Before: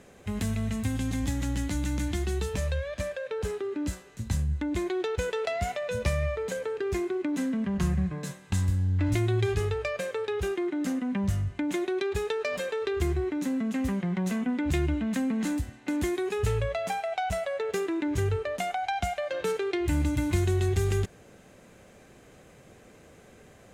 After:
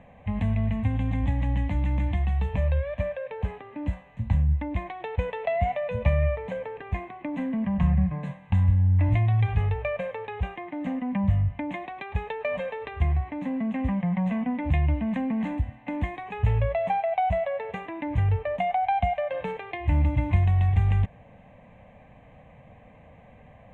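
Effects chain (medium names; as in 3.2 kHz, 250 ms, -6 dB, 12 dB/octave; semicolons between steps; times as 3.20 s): low-pass 1.8 kHz 12 dB/octave; static phaser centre 1.4 kHz, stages 6; trim +6.5 dB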